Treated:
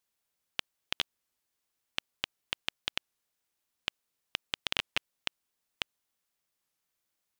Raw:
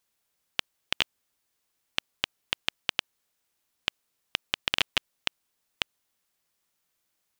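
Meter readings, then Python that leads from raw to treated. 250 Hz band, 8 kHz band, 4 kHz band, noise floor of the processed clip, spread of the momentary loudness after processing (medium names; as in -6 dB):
-5.5 dB, -5.5 dB, -5.5 dB, -84 dBFS, 8 LU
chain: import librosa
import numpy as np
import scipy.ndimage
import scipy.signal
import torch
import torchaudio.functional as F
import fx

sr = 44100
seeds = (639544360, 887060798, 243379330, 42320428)

y = fx.record_warp(x, sr, rpm=33.33, depth_cents=160.0)
y = y * librosa.db_to_amplitude(-5.5)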